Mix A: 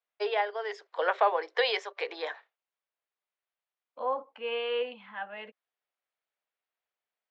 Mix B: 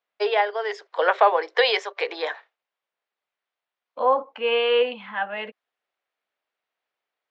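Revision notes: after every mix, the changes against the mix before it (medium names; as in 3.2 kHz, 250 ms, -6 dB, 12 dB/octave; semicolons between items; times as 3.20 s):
first voice +7.5 dB; second voice +11.0 dB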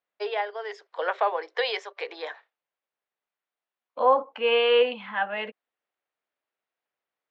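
first voice -7.5 dB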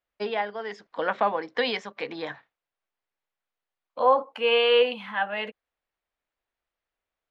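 first voice: remove Chebyshev high-pass 380 Hz, order 5; second voice: remove band-pass 180–3400 Hz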